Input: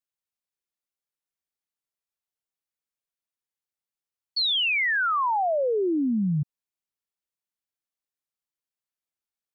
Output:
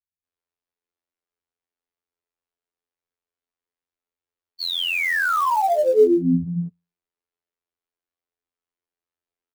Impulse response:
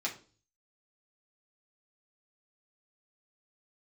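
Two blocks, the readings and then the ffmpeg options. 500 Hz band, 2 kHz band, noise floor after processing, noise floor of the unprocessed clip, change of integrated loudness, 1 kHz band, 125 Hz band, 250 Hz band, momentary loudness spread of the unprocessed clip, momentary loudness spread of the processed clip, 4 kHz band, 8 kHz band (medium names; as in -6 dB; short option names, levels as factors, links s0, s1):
+8.0 dB, +2.0 dB, under -85 dBFS, under -85 dBFS, +4.0 dB, +4.0 dB, +2.0 dB, +4.0 dB, 8 LU, 12 LU, -1.5 dB, no reading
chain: -filter_complex "[0:a]lowpass=f=1600:p=1,equalizer=f=410:w=6.4:g=8.5,bandreject=f=60:t=h:w=6,bandreject=f=120:t=h:w=6,bandreject=f=180:t=h:w=6,afftfilt=real='hypot(re,im)*cos(PI*b)':imag='0':win_size=2048:overlap=0.75,acrossover=split=180[s0][s1];[s1]adelay=240[s2];[s0][s2]amix=inputs=2:normalize=0,acrossover=split=160|670[s3][s4][s5];[s5]acrusher=bits=4:mode=log:mix=0:aa=0.000001[s6];[s3][s4][s6]amix=inputs=3:normalize=0,volume=2.82"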